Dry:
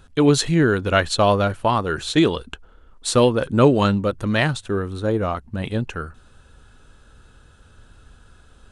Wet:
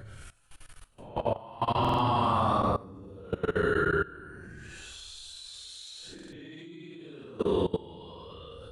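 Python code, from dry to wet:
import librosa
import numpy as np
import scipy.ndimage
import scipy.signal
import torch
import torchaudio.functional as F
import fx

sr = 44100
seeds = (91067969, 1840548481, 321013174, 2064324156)

y = fx.over_compress(x, sr, threshold_db=-19.0, ratio=-0.5)
y = fx.paulstretch(y, sr, seeds[0], factor=10.0, window_s=0.05, from_s=1.53)
y = fx.level_steps(y, sr, step_db=20)
y = fx.buffer_glitch(y, sr, at_s=(1.8, 6.14), block=2048, repeats=3)
y = y * 10.0 ** (-5.5 / 20.0)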